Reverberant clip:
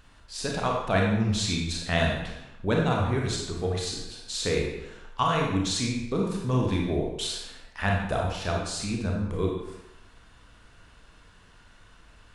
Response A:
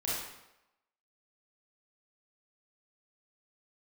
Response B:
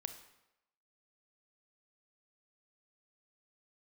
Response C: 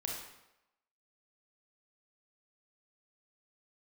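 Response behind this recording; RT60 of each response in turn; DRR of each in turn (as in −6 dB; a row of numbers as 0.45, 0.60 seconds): C; 0.90, 0.90, 0.90 seconds; −7.5, 8.5, −1.5 decibels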